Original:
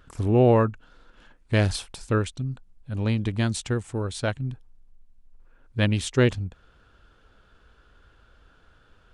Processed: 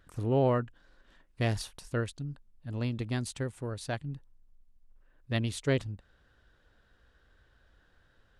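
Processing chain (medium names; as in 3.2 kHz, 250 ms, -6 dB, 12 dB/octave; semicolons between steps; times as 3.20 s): speed mistake 44.1 kHz file played as 48 kHz; trim -8 dB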